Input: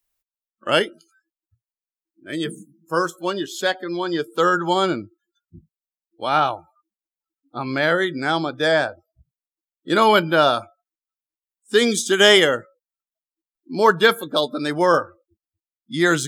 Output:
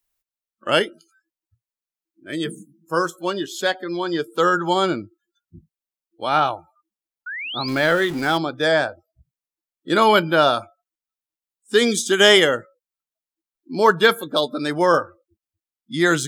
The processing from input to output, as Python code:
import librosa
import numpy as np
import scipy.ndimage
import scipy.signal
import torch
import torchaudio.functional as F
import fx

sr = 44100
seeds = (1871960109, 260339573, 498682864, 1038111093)

y = fx.zero_step(x, sr, step_db=-29.5, at=(7.68, 8.38))
y = fx.spec_paint(y, sr, seeds[0], shape='rise', start_s=7.26, length_s=0.43, low_hz=1400.0, high_hz=5100.0, level_db=-30.0)